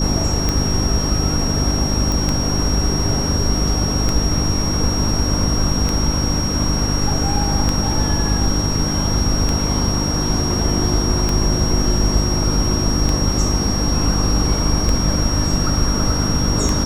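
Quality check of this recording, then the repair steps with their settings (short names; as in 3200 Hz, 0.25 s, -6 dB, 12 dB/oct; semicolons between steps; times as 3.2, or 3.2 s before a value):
hum 50 Hz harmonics 6 -22 dBFS
tick 33 1/3 rpm -5 dBFS
tone 5600 Hz -23 dBFS
2.12 pop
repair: de-click; notch 5600 Hz, Q 30; de-hum 50 Hz, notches 6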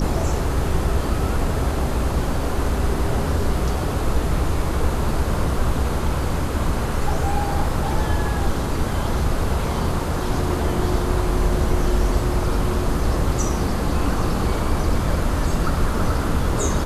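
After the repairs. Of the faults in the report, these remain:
none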